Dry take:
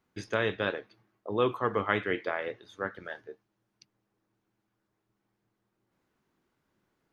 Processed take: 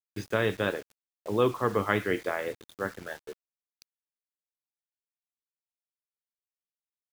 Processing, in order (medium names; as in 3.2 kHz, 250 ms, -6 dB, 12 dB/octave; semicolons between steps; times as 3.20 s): bit crusher 8-bit; bass shelf 430 Hz +5 dB